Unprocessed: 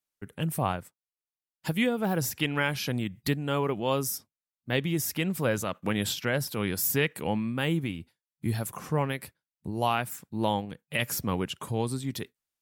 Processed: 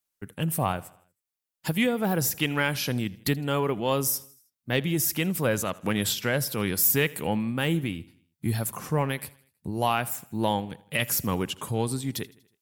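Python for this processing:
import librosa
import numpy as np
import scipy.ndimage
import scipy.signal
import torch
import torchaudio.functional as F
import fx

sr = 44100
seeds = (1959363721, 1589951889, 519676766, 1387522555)

p1 = fx.high_shelf(x, sr, hz=7700.0, db=6.0)
p2 = 10.0 ** (-20.5 / 20.0) * np.tanh(p1 / 10.0 ** (-20.5 / 20.0))
p3 = p1 + (p2 * librosa.db_to_amplitude(-11.0))
y = fx.echo_feedback(p3, sr, ms=80, feedback_pct=53, wet_db=-22.0)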